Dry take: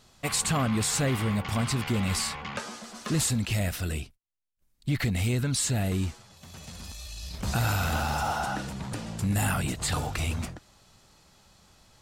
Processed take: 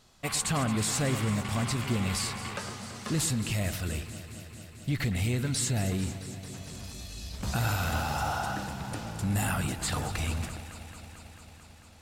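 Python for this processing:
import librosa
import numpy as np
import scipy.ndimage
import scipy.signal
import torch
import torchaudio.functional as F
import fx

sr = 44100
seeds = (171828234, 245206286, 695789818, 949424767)

y = fx.echo_alternate(x, sr, ms=111, hz=2400.0, feedback_pct=88, wet_db=-12.0)
y = y * 10.0 ** (-2.5 / 20.0)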